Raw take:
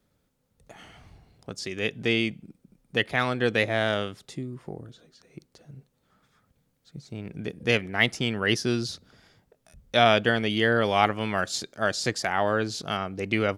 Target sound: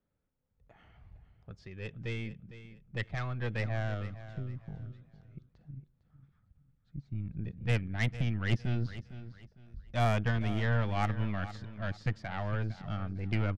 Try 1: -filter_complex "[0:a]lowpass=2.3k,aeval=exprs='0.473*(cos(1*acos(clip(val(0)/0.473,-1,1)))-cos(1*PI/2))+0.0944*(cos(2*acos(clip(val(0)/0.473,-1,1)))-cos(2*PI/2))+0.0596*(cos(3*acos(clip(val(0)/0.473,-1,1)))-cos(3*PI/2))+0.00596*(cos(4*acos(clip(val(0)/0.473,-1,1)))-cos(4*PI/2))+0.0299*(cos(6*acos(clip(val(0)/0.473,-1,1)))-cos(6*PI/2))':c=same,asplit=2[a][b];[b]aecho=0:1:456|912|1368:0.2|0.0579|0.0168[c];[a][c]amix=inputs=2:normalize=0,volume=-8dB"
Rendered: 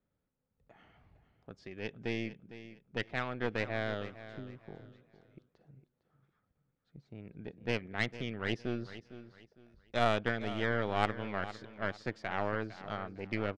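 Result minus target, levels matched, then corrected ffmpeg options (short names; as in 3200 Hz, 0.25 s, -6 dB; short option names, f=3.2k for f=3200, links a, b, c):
125 Hz band -9.0 dB
-filter_complex "[0:a]lowpass=2.3k,asubboost=boost=11.5:cutoff=120,aeval=exprs='0.473*(cos(1*acos(clip(val(0)/0.473,-1,1)))-cos(1*PI/2))+0.0944*(cos(2*acos(clip(val(0)/0.473,-1,1)))-cos(2*PI/2))+0.0596*(cos(3*acos(clip(val(0)/0.473,-1,1)))-cos(3*PI/2))+0.00596*(cos(4*acos(clip(val(0)/0.473,-1,1)))-cos(4*PI/2))+0.0299*(cos(6*acos(clip(val(0)/0.473,-1,1)))-cos(6*PI/2))':c=same,asplit=2[a][b];[b]aecho=0:1:456|912|1368:0.2|0.0579|0.0168[c];[a][c]amix=inputs=2:normalize=0,volume=-8dB"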